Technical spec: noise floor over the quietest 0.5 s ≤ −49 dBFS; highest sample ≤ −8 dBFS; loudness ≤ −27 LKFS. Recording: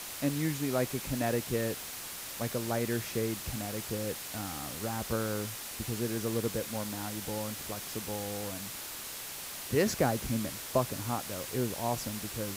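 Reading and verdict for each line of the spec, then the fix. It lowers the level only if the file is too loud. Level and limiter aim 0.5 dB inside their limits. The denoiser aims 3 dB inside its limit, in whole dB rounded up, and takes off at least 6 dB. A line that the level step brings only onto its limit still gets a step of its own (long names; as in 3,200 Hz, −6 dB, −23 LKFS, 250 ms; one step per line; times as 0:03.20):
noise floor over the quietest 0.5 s −42 dBFS: out of spec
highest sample −14.0 dBFS: in spec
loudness −34.0 LKFS: in spec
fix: broadband denoise 10 dB, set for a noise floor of −42 dBFS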